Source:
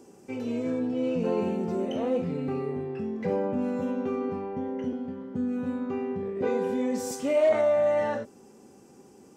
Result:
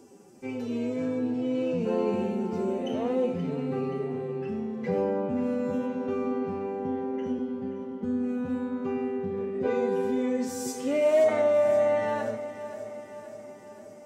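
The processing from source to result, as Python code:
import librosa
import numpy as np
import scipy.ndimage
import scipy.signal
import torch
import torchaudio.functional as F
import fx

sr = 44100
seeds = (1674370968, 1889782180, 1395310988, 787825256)

y = fx.stretch_vocoder(x, sr, factor=1.5)
y = fx.echo_feedback(y, sr, ms=527, feedback_pct=59, wet_db=-13)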